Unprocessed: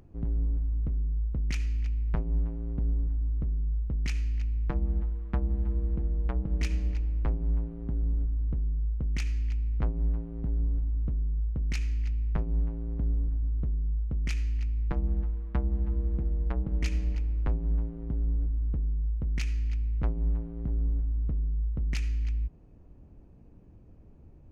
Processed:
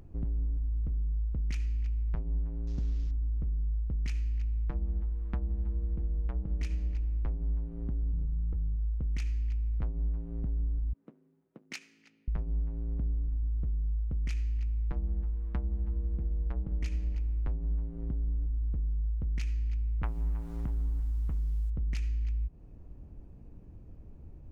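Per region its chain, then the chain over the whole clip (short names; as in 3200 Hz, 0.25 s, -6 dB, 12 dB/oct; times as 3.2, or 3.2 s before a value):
2.67–3.11 CVSD 32 kbps + high shelf 4000 Hz +7.5 dB
8.12–8.76 bell 1100 Hz +4 dB 1.9 oct + comb 2.3 ms, depth 56% + core saturation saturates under 73 Hz
10.93–12.28 Bessel high-pass 340 Hz, order 6 + upward expander, over -53 dBFS
20.03–21.7 band shelf 1600 Hz +11.5 dB 2.4 oct + requantised 10-bit, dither none
whole clip: compressor 3:1, threshold -36 dBFS; low shelf 98 Hz +6.5 dB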